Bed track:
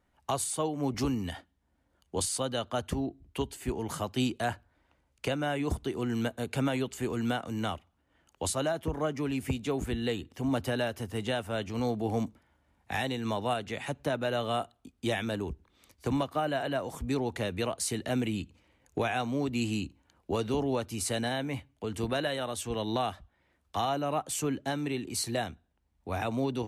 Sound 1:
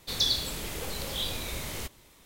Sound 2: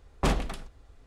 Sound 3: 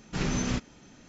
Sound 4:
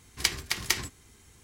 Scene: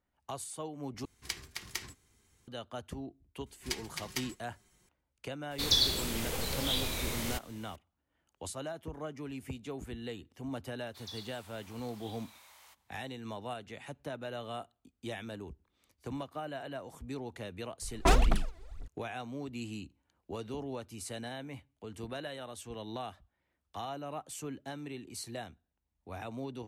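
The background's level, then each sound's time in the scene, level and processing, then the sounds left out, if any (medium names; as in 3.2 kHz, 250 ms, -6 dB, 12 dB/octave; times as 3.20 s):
bed track -10 dB
1.05 s: replace with 4 -12 dB
3.46 s: add 4 -13.5 dB + comb 5.5 ms, depth 92%
5.51 s: add 1
10.87 s: add 1 -11.5 dB + ladder high-pass 750 Hz, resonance 45%
17.82 s: add 2 -1.5 dB + phaser 2 Hz, delay 3.1 ms, feedback 80%
not used: 3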